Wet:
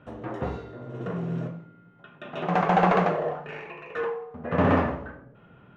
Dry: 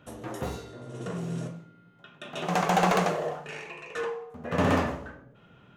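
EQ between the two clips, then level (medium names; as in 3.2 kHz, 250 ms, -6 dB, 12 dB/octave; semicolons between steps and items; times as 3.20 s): low-pass 2.1 kHz 12 dB/octave; +3.0 dB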